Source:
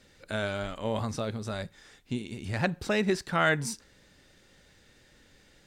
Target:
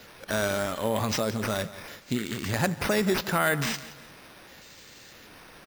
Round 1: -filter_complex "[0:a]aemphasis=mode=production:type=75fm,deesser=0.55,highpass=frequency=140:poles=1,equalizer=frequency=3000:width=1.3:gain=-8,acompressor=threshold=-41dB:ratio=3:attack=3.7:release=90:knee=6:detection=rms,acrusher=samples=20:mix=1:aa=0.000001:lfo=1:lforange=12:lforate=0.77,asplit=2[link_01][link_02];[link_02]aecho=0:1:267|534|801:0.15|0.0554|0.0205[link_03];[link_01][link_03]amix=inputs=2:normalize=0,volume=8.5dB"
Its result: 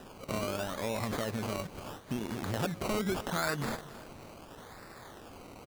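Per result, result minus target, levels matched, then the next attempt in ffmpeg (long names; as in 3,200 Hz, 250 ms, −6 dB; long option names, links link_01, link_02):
echo 93 ms late; downward compressor: peak gain reduction +7.5 dB; sample-and-hold swept by an LFO: distortion +8 dB
-filter_complex "[0:a]aemphasis=mode=production:type=75fm,deesser=0.55,highpass=frequency=140:poles=1,equalizer=frequency=3000:width=1.3:gain=-8,acompressor=threshold=-41dB:ratio=3:attack=3.7:release=90:knee=6:detection=rms,acrusher=samples=20:mix=1:aa=0.000001:lfo=1:lforange=12:lforate=0.77,asplit=2[link_01][link_02];[link_02]aecho=0:1:174|348|522:0.15|0.0554|0.0205[link_03];[link_01][link_03]amix=inputs=2:normalize=0,volume=8.5dB"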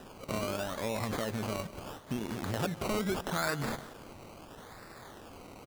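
downward compressor: peak gain reduction +7.5 dB; sample-and-hold swept by an LFO: distortion +8 dB
-filter_complex "[0:a]aemphasis=mode=production:type=75fm,deesser=0.55,highpass=frequency=140:poles=1,equalizer=frequency=3000:width=1.3:gain=-8,acompressor=threshold=-29.5dB:ratio=3:attack=3.7:release=90:knee=6:detection=rms,acrusher=samples=20:mix=1:aa=0.000001:lfo=1:lforange=12:lforate=0.77,asplit=2[link_01][link_02];[link_02]aecho=0:1:174|348|522:0.15|0.0554|0.0205[link_03];[link_01][link_03]amix=inputs=2:normalize=0,volume=8.5dB"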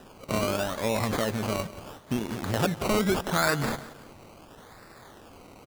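sample-and-hold swept by an LFO: distortion +8 dB
-filter_complex "[0:a]aemphasis=mode=production:type=75fm,deesser=0.55,highpass=frequency=140:poles=1,equalizer=frequency=3000:width=1.3:gain=-8,acompressor=threshold=-29.5dB:ratio=3:attack=3.7:release=90:knee=6:detection=rms,acrusher=samples=5:mix=1:aa=0.000001:lfo=1:lforange=3:lforate=0.77,asplit=2[link_01][link_02];[link_02]aecho=0:1:174|348|522:0.15|0.0554|0.0205[link_03];[link_01][link_03]amix=inputs=2:normalize=0,volume=8.5dB"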